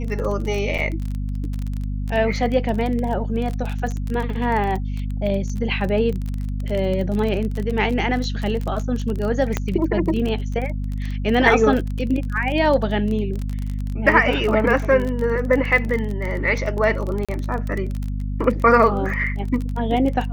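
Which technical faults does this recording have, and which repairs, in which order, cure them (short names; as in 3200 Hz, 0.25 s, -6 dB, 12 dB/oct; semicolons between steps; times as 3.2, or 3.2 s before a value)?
crackle 26/s -24 dBFS
hum 50 Hz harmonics 5 -25 dBFS
0.78–0.79 gap 6.5 ms
9.57 pop -7 dBFS
17.25–17.29 gap 36 ms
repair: de-click; de-hum 50 Hz, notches 5; interpolate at 0.78, 6.5 ms; interpolate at 17.25, 36 ms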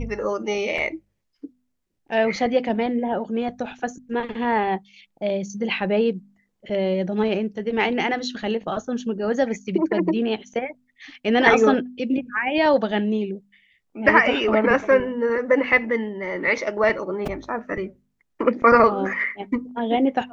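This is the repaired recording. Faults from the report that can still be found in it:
none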